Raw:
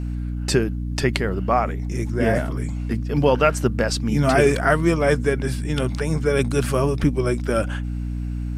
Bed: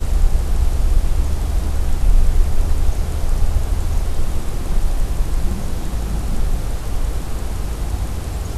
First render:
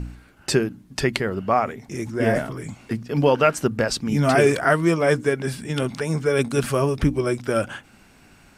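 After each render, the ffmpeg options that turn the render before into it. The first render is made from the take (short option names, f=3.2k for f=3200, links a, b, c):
-af "bandreject=f=60:t=h:w=4,bandreject=f=120:t=h:w=4,bandreject=f=180:t=h:w=4,bandreject=f=240:t=h:w=4,bandreject=f=300:t=h:w=4"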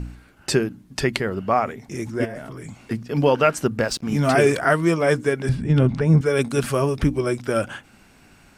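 -filter_complex "[0:a]asplit=3[a][b][c];[a]afade=t=out:st=2.24:d=0.02[d];[b]acompressor=threshold=-32dB:ratio=4:attack=3.2:release=140:knee=1:detection=peak,afade=t=in:st=2.24:d=0.02,afade=t=out:st=2.79:d=0.02[e];[c]afade=t=in:st=2.79:d=0.02[f];[d][e][f]amix=inputs=3:normalize=0,asettb=1/sr,asplit=3[g][h][i];[g]atrim=end=3.834[j];[h]atrim=start=3.83:end=4.3,asetpts=PTS-STARTPTS,afade=t=in:d=0.004:c=qsin,afade=t=out:st=0.466:d=0.004:c=qsin,aeval=exprs='sgn(val(0))*max(abs(val(0))-0.00841,0)':c=same[k];[i]atrim=start=4.296[l];[j][k]acrossfade=d=0.004:c1=hsin:c2=qsin[m];[m][l]acrossfade=d=0.004:c1=qsin:c2=hsin,asettb=1/sr,asplit=3[n][o][p];[n]atrim=end=5.494[q];[o]atrim=start=5.49:end=6.21,asetpts=PTS-STARTPTS,afade=t=in:d=0.004:c=qsin,afade=t=out:st=0.716:d=0.004:c=qsin,aemphasis=mode=reproduction:type=riaa[r];[p]atrim=start=6.206[s];[q][r]acrossfade=d=0.004:c1=hsin:c2=qsin[t];[t][s]acrossfade=d=0.004:c1=qsin:c2=hsin"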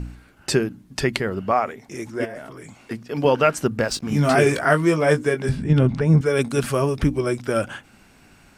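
-filter_complex "[0:a]asettb=1/sr,asplit=3[a][b][c];[a]atrim=end=1.514[d];[b]atrim=start=1.51:end=3.25,asetpts=PTS-STARTPTS,afade=t=in:d=0.004:c=qsin,afade=t=out:st=1.736:d=0.004:c=qsin,bass=f=250:g=-8,treble=f=4k:g=-1[e];[c]atrim=start=3.246[f];[d][e]acrossfade=d=0.004:c1=hsin:c2=qsin[g];[g][f]acrossfade=d=0.004:c1=qsin:c2=hsin,asettb=1/sr,asplit=3[h][i][j];[h]atrim=end=3.904[k];[i]atrim=start=3.9:end=5.73,asetpts=PTS-STARTPTS,afade=t=in:d=0.004:c=qsin,afade=t=out:st=1.826:d=0.004:c=qsin,asplit=2[l][m];[m]adelay=20,volume=-8dB[n];[l][n]amix=inputs=2:normalize=0,atrim=end_sample=80703[o];[j]atrim=start=5.726[p];[k][o]acrossfade=d=0.004:c1=hsin:c2=qsin[q];[q][p]acrossfade=d=0.004:c1=qsin:c2=hsin"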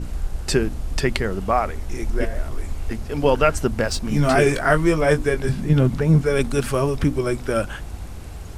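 -filter_complex "[1:a]volume=-11dB[a];[0:a][a]amix=inputs=2:normalize=0"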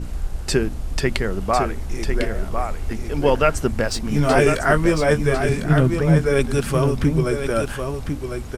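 -af "aecho=1:1:1051:0.473"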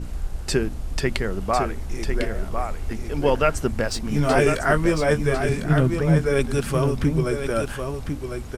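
-af "volume=-2.5dB"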